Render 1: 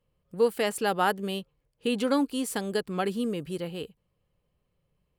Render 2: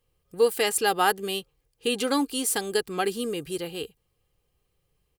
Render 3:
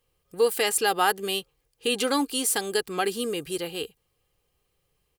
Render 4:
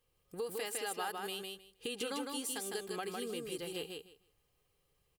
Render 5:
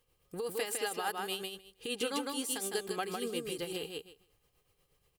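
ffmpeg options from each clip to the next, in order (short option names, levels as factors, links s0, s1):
-af "highshelf=f=2900:g=10,aecho=1:1:2.5:0.48"
-filter_complex "[0:a]lowshelf=f=310:g=-6,asplit=2[s0][s1];[s1]alimiter=limit=0.112:level=0:latency=1:release=59,volume=0.891[s2];[s0][s2]amix=inputs=2:normalize=0,volume=0.75"
-filter_complex "[0:a]acompressor=threshold=0.0158:ratio=3,asplit=2[s0][s1];[s1]aecho=0:1:156|312|468:0.668|0.114|0.0193[s2];[s0][s2]amix=inputs=2:normalize=0,volume=0.562"
-af "tremolo=f=8.3:d=0.55,volume=2"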